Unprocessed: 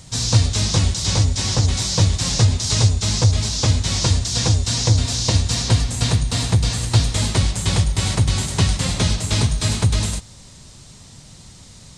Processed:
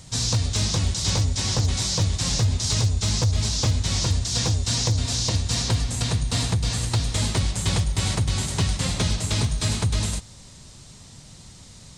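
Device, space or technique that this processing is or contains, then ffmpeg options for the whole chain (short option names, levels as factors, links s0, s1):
limiter into clipper: -filter_complex "[0:a]asettb=1/sr,asplit=3[s0][s1][s2];[s0]atrim=end=2.234[s3];[s1]atrim=start=2.23:end=4.26,asetpts=PTS-STARTPTS,afade=t=in:d=0.004:c=qsin,afade=t=out:st=2.026:d=0.004:c=qsin,lowshelf=f=88:g=3.5[s4];[s2]atrim=start=4.256[s5];[s3][s4]acrossfade=d=0.004:c1=hsin:c2=qsin[s6];[s6][s5]acrossfade=d=0.004:c1=qsin:c2=hsin,alimiter=limit=0.335:level=0:latency=1:release=206,asoftclip=type=hard:threshold=0.266,volume=0.75"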